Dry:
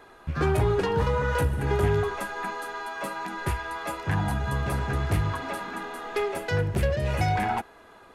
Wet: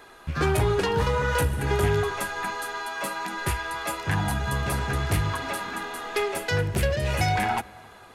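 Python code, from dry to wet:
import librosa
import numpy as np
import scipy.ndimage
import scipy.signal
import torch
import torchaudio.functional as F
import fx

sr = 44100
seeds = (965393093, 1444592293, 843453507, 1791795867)

y = fx.high_shelf(x, sr, hz=2100.0, db=8.5)
y = fx.echo_filtered(y, sr, ms=268, feedback_pct=41, hz=2000.0, wet_db=-23)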